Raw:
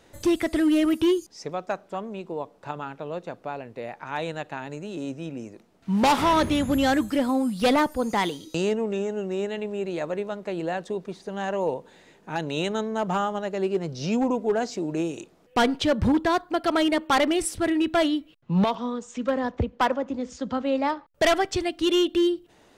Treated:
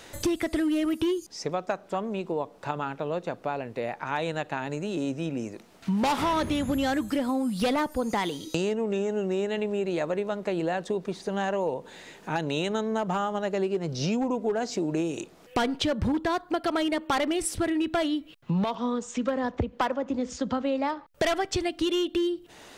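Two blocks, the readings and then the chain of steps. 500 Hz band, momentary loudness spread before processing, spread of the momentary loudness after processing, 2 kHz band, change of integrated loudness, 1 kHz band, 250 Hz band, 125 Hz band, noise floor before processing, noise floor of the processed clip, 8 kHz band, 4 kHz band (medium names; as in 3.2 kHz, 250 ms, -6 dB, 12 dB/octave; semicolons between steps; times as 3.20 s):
-2.5 dB, 13 LU, 6 LU, -3.5 dB, -3.0 dB, -3.5 dB, -3.0 dB, -1.0 dB, -58 dBFS, -53 dBFS, -1.0 dB, -3.5 dB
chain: compression 6:1, threshold -28 dBFS, peak gain reduction 10 dB; tape noise reduction on one side only encoder only; trim +4 dB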